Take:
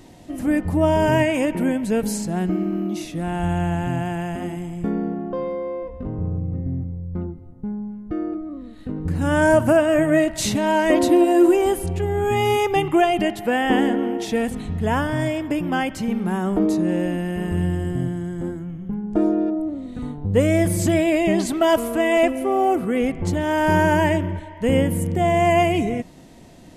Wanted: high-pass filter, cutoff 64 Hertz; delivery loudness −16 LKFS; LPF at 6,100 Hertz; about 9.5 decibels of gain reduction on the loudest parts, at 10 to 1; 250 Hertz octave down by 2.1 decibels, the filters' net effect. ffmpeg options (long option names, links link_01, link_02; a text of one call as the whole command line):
ffmpeg -i in.wav -af "highpass=64,lowpass=6100,equalizer=frequency=250:width_type=o:gain=-3,acompressor=threshold=-22dB:ratio=10,volume=11.5dB" out.wav